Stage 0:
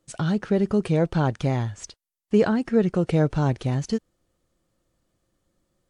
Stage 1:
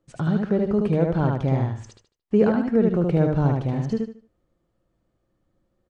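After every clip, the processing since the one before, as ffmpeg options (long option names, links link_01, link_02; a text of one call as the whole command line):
ffmpeg -i in.wav -filter_complex "[0:a]lowpass=frequency=1300:poles=1,asplit=2[link_01][link_02];[link_02]aecho=0:1:75|150|225|300:0.708|0.198|0.0555|0.0155[link_03];[link_01][link_03]amix=inputs=2:normalize=0" out.wav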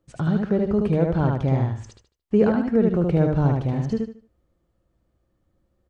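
ffmpeg -i in.wav -af "equalizer=frequency=65:width_type=o:width=0.68:gain=10.5" out.wav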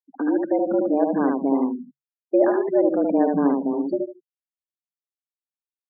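ffmpeg -i in.wav -af "afftfilt=real='re*gte(hypot(re,im),0.0398)':imag='im*gte(hypot(re,im),0.0398)':win_size=1024:overlap=0.75,afreqshift=140" out.wav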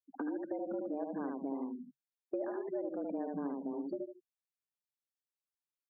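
ffmpeg -i in.wav -af "acompressor=threshold=-30dB:ratio=4,volume=-7dB" out.wav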